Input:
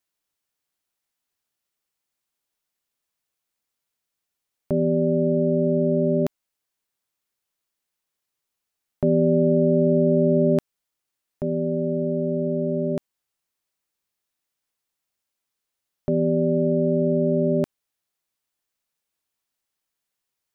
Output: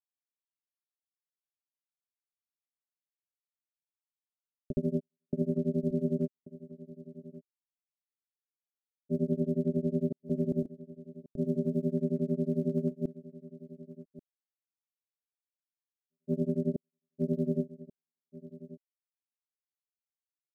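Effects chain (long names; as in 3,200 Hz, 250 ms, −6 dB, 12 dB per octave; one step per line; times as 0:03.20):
parametric band 110 Hz −7.5 dB 1.2 octaves
brickwall limiter −21 dBFS, peak gain reduction 10 dB
Gaussian smoothing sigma 21 samples
centre clipping without the shift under −56.5 dBFS
gate pattern "xxxxxxx.xxx..xxx" 81 BPM −60 dB
granular cloud 100 ms, grains 11 per second, pitch spread up and down by 0 semitones
on a send: single-tap delay 1,135 ms −17 dB
on the sum: level +6.5 dB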